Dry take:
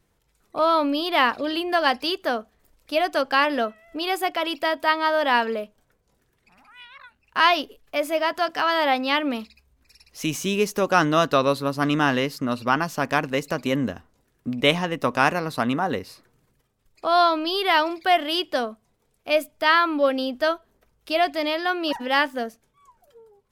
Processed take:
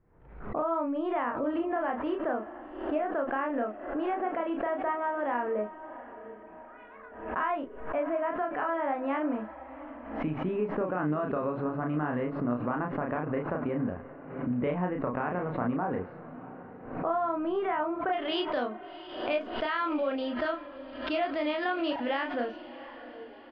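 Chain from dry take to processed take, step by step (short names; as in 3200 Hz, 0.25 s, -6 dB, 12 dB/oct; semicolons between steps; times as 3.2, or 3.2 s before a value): Bessel low-pass 1200 Hz, order 6, from 18.12 s 2400 Hz; limiter -14.5 dBFS, peak gain reduction 7.5 dB; compressor, threshold -27 dBFS, peak gain reduction 8.5 dB; doubler 33 ms -3.5 dB; diffused feedback echo 0.715 s, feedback 47%, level -14.5 dB; backwards sustainer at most 74 dB/s; gain -1.5 dB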